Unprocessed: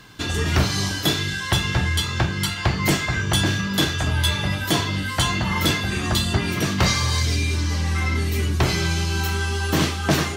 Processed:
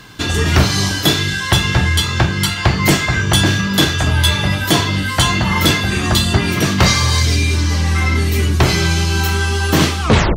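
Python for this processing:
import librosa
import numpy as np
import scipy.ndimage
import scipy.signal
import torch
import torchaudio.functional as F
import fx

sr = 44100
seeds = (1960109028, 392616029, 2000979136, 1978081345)

y = fx.tape_stop_end(x, sr, length_s=0.36)
y = y * librosa.db_to_amplitude(7.0)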